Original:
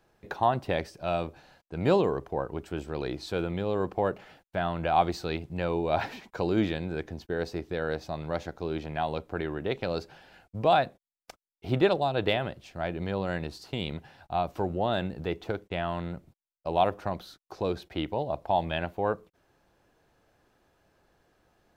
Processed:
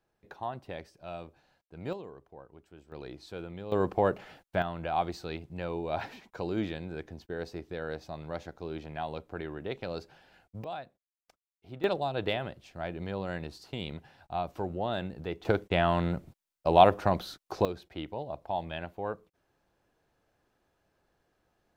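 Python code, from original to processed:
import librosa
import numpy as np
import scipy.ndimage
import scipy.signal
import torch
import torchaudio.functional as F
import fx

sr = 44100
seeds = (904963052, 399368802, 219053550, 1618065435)

y = fx.gain(x, sr, db=fx.steps((0.0, -12.0), (1.93, -19.0), (2.92, -10.5), (3.72, 1.5), (4.62, -6.0), (10.64, -17.0), (11.84, -4.5), (15.45, 5.5), (17.65, -7.0)))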